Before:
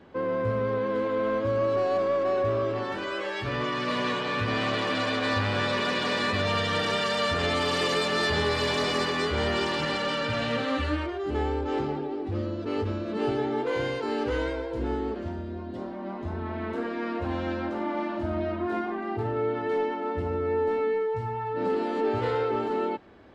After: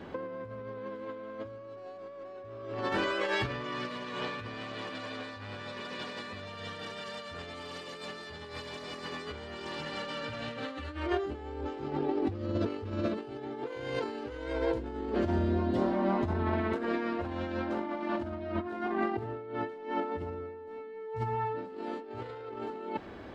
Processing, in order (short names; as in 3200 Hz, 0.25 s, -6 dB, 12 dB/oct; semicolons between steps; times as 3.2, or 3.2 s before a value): negative-ratio compressor -34 dBFS, ratio -0.5